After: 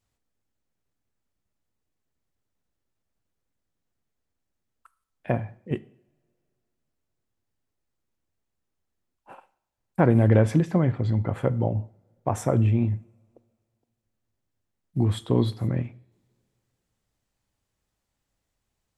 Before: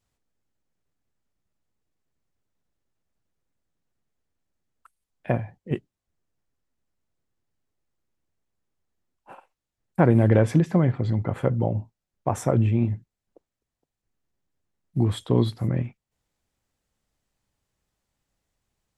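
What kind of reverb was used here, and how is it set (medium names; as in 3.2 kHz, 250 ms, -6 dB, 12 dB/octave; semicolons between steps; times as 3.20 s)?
two-slope reverb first 0.59 s, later 2.6 s, from -25 dB, DRR 16.5 dB; trim -1 dB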